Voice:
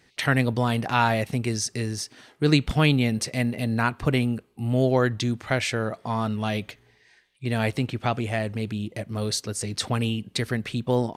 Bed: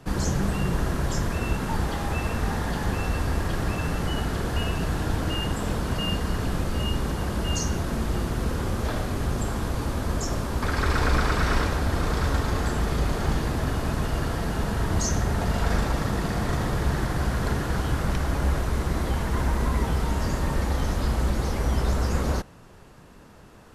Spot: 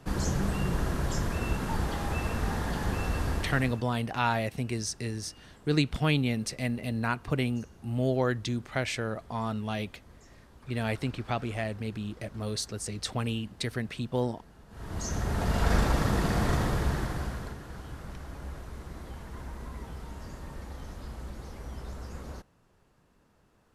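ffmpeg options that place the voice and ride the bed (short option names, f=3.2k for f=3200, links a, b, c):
-filter_complex "[0:a]adelay=3250,volume=-6dB[a];[1:a]volume=23dB,afade=t=out:st=3.29:d=0.57:silence=0.0668344,afade=t=in:st=14.69:d=1.07:silence=0.0446684,afade=t=out:st=16.47:d=1.09:silence=0.158489[b];[a][b]amix=inputs=2:normalize=0"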